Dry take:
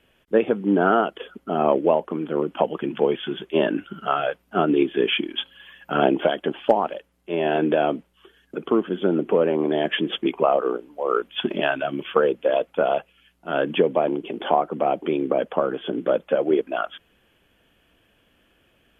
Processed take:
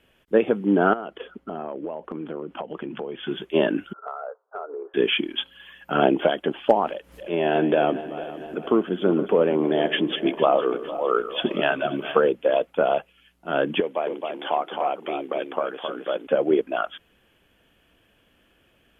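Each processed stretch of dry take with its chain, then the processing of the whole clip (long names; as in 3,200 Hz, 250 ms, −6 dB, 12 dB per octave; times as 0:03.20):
0:00.93–0:03.28: low-pass filter 2,600 Hz 6 dB per octave + downward compressor 10 to 1, threshold −27 dBFS
0:03.93–0:04.94: Chebyshev band-pass filter 430–1,400 Hz, order 4 + downward compressor, threshold −29 dBFS + high-frequency loss of the air 96 metres
0:06.87–0:12.29: feedback delay that plays each chunk backwards 228 ms, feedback 63%, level −13 dB + upward compression, threshold −28 dBFS
0:13.80–0:16.27: high-pass filter 990 Hz 6 dB per octave + single-tap delay 266 ms −4.5 dB
whole clip: no processing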